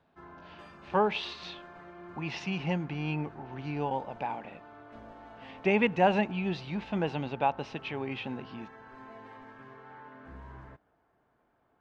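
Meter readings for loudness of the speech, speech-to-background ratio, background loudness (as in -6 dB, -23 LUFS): -31.5 LUFS, 18.5 dB, -50.0 LUFS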